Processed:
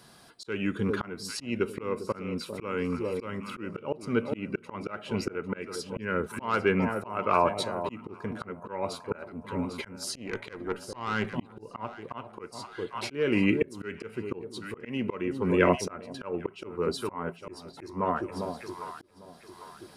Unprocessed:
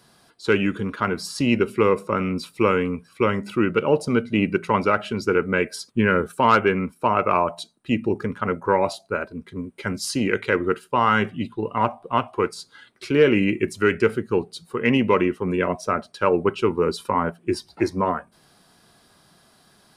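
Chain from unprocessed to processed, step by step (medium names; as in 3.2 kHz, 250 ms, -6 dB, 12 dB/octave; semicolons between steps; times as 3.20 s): 10.15–11.27 s: valve stage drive 14 dB, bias 0.5; echo whose repeats swap between lows and highs 400 ms, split 830 Hz, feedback 63%, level -12 dB; slow attack 599 ms; trim +1.5 dB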